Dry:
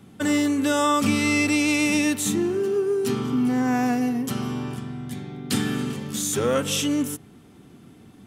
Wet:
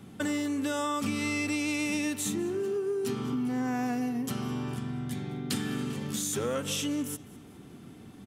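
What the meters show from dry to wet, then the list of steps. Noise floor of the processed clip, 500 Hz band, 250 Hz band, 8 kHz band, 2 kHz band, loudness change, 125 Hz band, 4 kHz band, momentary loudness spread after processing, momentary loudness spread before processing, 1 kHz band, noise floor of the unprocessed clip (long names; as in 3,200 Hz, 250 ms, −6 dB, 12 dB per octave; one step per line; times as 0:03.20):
−50 dBFS, −8.0 dB, −8.0 dB, −7.0 dB, −8.5 dB, −8.5 dB, −5.5 dB, −7.5 dB, 9 LU, 11 LU, −9.0 dB, −50 dBFS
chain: downward compressor 3 to 1, threshold −31 dBFS, peak gain reduction 10.5 dB
repeating echo 203 ms, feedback 42%, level −22 dB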